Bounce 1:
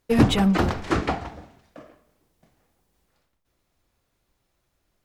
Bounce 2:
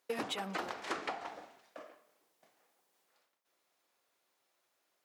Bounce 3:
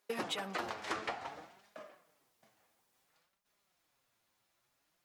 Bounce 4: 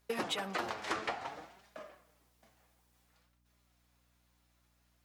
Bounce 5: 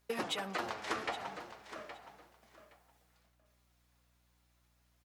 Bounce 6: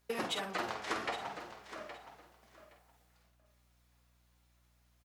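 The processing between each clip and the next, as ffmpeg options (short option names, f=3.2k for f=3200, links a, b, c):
-af "highpass=500,acompressor=threshold=-32dB:ratio=10,volume=-2.5dB"
-af "asubboost=boost=8:cutoff=150,flanger=delay=4.8:depth=4.6:regen=38:speed=0.57:shape=sinusoidal,volume=4.5dB"
-af "aeval=exprs='val(0)+0.000178*(sin(2*PI*60*n/s)+sin(2*PI*2*60*n/s)/2+sin(2*PI*3*60*n/s)/3+sin(2*PI*4*60*n/s)/4+sin(2*PI*5*60*n/s)/5)':c=same,volume=2dB"
-af "aecho=1:1:818|1636:0.251|0.0427,volume=-1dB"
-filter_complex "[0:a]asplit=2[a][b];[b]adelay=49,volume=-7dB[c];[a][c]amix=inputs=2:normalize=0"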